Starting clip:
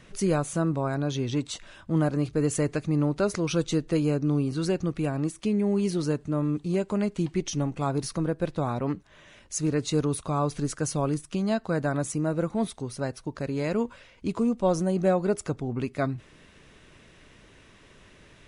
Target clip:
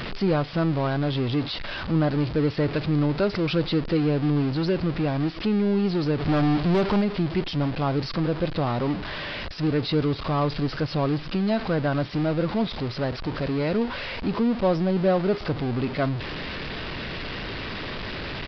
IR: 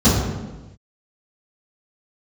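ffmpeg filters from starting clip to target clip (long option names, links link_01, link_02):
-filter_complex "[0:a]aeval=exprs='val(0)+0.5*0.0473*sgn(val(0))':channel_layout=same,aresample=11025,aresample=44100,asplit=3[link_01][link_02][link_03];[link_01]afade=type=out:start_time=6.19:duration=0.02[link_04];[link_02]aeval=exprs='0.211*(cos(1*acos(clip(val(0)/0.211,-1,1)))-cos(1*PI/2))+0.0531*(cos(5*acos(clip(val(0)/0.211,-1,1)))-cos(5*PI/2))+0.0133*(cos(7*acos(clip(val(0)/0.211,-1,1)))-cos(7*PI/2))':channel_layout=same,afade=type=in:start_time=6.19:duration=0.02,afade=type=out:start_time=7:duration=0.02[link_05];[link_03]afade=type=in:start_time=7:duration=0.02[link_06];[link_04][link_05][link_06]amix=inputs=3:normalize=0"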